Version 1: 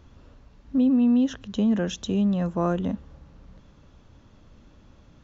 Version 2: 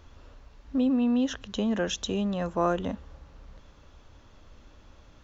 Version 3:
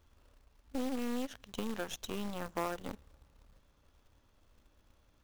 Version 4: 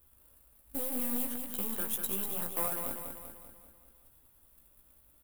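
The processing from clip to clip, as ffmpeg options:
-af "equalizer=f=170:t=o:w=1.9:g=-10.5,volume=3dB"
-af "aeval=exprs='0.224*(cos(1*acos(clip(val(0)/0.224,-1,1)))-cos(1*PI/2))+0.0501*(cos(3*acos(clip(val(0)/0.224,-1,1)))-cos(3*PI/2))+0.00355*(cos(5*acos(clip(val(0)/0.224,-1,1)))-cos(5*PI/2))+0.00631*(cos(7*acos(clip(val(0)/0.224,-1,1)))-cos(7*PI/2))+0.0112*(cos(8*acos(clip(val(0)/0.224,-1,1)))-cos(8*PI/2))':c=same,acompressor=threshold=-32dB:ratio=3,acrusher=bits=3:mode=log:mix=0:aa=0.000001,volume=-1dB"
-filter_complex "[0:a]flanger=delay=15.5:depth=2.4:speed=1.9,aexciter=amount=8.8:drive=8.8:freq=8.8k,asplit=2[a][b];[b]aecho=0:1:194|388|582|776|970|1164|1358:0.501|0.266|0.141|0.0746|0.0395|0.021|0.0111[c];[a][c]amix=inputs=2:normalize=0"

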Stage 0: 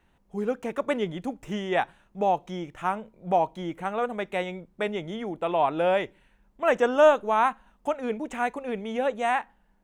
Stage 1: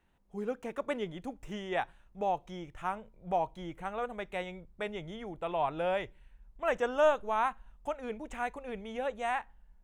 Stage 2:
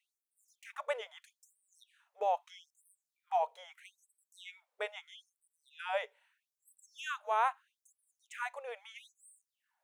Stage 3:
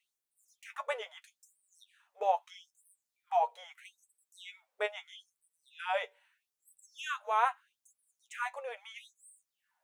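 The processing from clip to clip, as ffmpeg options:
-af "asubboost=boost=7:cutoff=89,volume=-7dB"
-af "afftfilt=real='re*gte(b*sr/1024,410*pow(8000/410,0.5+0.5*sin(2*PI*0.78*pts/sr)))':imag='im*gte(b*sr/1024,410*pow(8000/410,0.5+0.5*sin(2*PI*0.78*pts/sr)))':win_size=1024:overlap=0.75"
-af "flanger=delay=7.8:depth=3.3:regen=38:speed=0.26:shape=triangular,volume=6dB"

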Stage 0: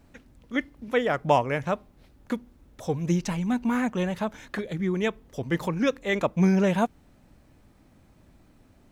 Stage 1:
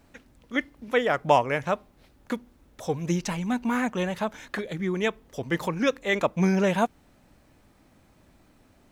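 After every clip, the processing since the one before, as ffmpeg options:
-af "lowshelf=f=310:g=-6.5,volume=2.5dB"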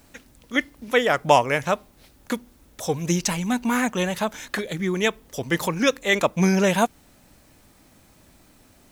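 -af "highshelf=f=4.1k:g=11.5,volume=3dB"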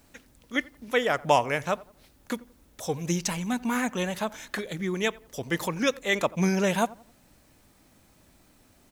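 -filter_complex "[0:a]asplit=2[a][b];[b]adelay=87,lowpass=f=1.4k:p=1,volume=-20dB,asplit=2[c][d];[d]adelay=87,lowpass=f=1.4k:p=1,volume=0.37,asplit=2[e][f];[f]adelay=87,lowpass=f=1.4k:p=1,volume=0.37[g];[a][c][e][g]amix=inputs=4:normalize=0,volume=-5dB"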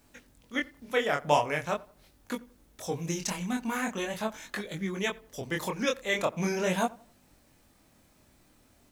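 -af "flanger=delay=20:depth=7.4:speed=0.42"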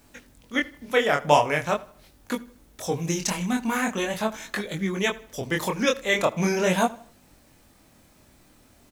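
-af "aecho=1:1:78|156|234:0.0668|0.0287|0.0124,volume=6dB"

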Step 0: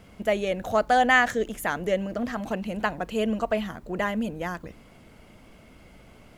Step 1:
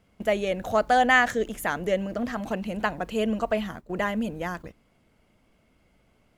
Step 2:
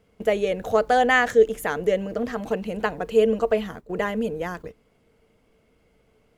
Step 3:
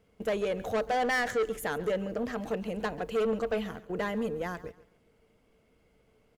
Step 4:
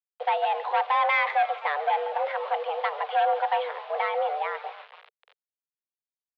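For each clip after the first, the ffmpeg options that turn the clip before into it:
-af "agate=range=-13dB:threshold=-38dB:ratio=16:detection=peak"
-af "equalizer=f=450:t=o:w=0.21:g=14"
-af "asoftclip=type=tanh:threshold=-20dB,aecho=1:1:138|276|414:0.126|0.0365|0.0106,volume=-4dB"
-filter_complex "[0:a]asplit=6[a][b][c][d][e][f];[b]adelay=261,afreqshift=140,volume=-19dB[g];[c]adelay=522,afreqshift=280,volume=-23.3dB[h];[d]adelay=783,afreqshift=420,volume=-27.6dB[i];[e]adelay=1044,afreqshift=560,volume=-31.9dB[j];[f]adelay=1305,afreqshift=700,volume=-36.2dB[k];[a][g][h][i][j][k]amix=inputs=6:normalize=0,acrusher=bits=7:mix=0:aa=0.000001,highpass=f=160:t=q:w=0.5412,highpass=f=160:t=q:w=1.307,lowpass=f=3.4k:t=q:w=0.5176,lowpass=f=3.4k:t=q:w=0.7071,lowpass=f=3.4k:t=q:w=1.932,afreqshift=290,volume=5dB"

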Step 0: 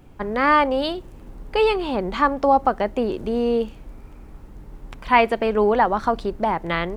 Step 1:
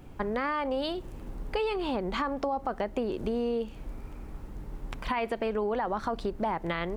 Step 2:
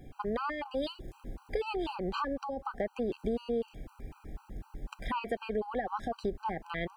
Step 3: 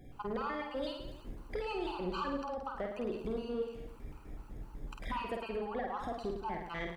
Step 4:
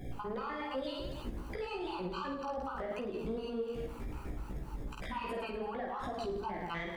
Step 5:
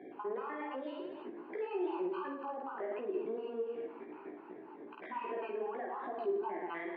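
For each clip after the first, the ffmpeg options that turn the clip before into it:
-af "alimiter=limit=-13dB:level=0:latency=1:release=22,acompressor=threshold=-28dB:ratio=4"
-af "afftfilt=real='re*gt(sin(2*PI*4*pts/sr)*(1-2*mod(floor(b*sr/1024/790),2)),0)':imag='im*gt(sin(2*PI*4*pts/sr)*(1-2*mod(floor(b*sr/1024/790),2)),0)':win_size=1024:overlap=0.75,volume=-1dB"
-filter_complex "[0:a]asoftclip=type=tanh:threshold=-25dB,asplit=2[a][b];[b]aecho=0:1:50|107.5|173.6|249.7|337.1:0.631|0.398|0.251|0.158|0.1[c];[a][c]amix=inputs=2:normalize=0,volume=-4dB"
-af "acompressor=threshold=-42dB:ratio=6,alimiter=level_in=16.5dB:limit=-24dB:level=0:latency=1:release=68,volume=-16.5dB,flanger=delay=15:depth=2.8:speed=2.6,volume=13dB"
-af "highpass=f=320:w=0.5412,highpass=f=320:w=1.3066,equalizer=f=370:t=q:w=4:g=6,equalizer=f=530:t=q:w=4:g=-8,equalizer=f=800:t=q:w=4:g=-3,equalizer=f=1.3k:t=q:w=4:g=-9,equalizer=f=2k:t=q:w=4:g=-3,lowpass=f=2.1k:w=0.5412,lowpass=f=2.1k:w=1.3066,volume=2.5dB"

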